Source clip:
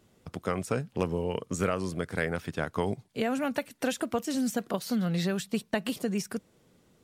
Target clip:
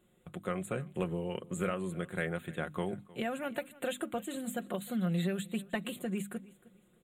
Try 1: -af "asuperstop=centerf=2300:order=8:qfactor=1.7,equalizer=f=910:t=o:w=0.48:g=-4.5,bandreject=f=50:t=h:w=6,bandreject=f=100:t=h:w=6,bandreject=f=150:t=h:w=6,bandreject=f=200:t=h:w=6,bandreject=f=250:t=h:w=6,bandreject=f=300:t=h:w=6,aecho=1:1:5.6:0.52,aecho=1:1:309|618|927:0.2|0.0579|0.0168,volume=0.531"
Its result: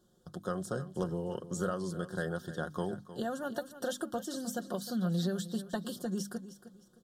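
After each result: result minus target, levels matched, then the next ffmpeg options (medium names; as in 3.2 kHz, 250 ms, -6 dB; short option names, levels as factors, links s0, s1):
echo-to-direct +7 dB; 2 kHz band -3.0 dB
-af "asuperstop=centerf=2300:order=8:qfactor=1.7,equalizer=f=910:t=o:w=0.48:g=-4.5,bandreject=f=50:t=h:w=6,bandreject=f=100:t=h:w=6,bandreject=f=150:t=h:w=6,bandreject=f=200:t=h:w=6,bandreject=f=250:t=h:w=6,bandreject=f=300:t=h:w=6,aecho=1:1:5.6:0.52,aecho=1:1:309|618:0.0891|0.0258,volume=0.531"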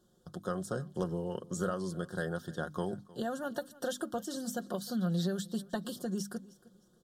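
2 kHz band -3.0 dB
-af "asuperstop=centerf=5300:order=8:qfactor=1.7,equalizer=f=910:t=o:w=0.48:g=-4.5,bandreject=f=50:t=h:w=6,bandreject=f=100:t=h:w=6,bandreject=f=150:t=h:w=6,bandreject=f=200:t=h:w=6,bandreject=f=250:t=h:w=6,bandreject=f=300:t=h:w=6,aecho=1:1:5.6:0.52,aecho=1:1:309|618:0.0891|0.0258,volume=0.531"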